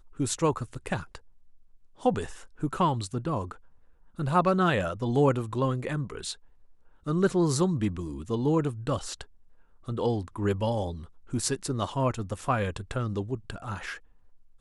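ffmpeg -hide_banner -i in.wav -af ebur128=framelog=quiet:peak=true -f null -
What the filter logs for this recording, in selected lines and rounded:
Integrated loudness:
  I:         -28.9 LUFS
  Threshold: -39.5 LUFS
Loudness range:
  LRA:         4.1 LU
  Threshold: -49.5 LUFS
  LRA low:   -31.8 LUFS
  LRA high:  -27.7 LUFS
True peak:
  Peak:      -11.6 dBFS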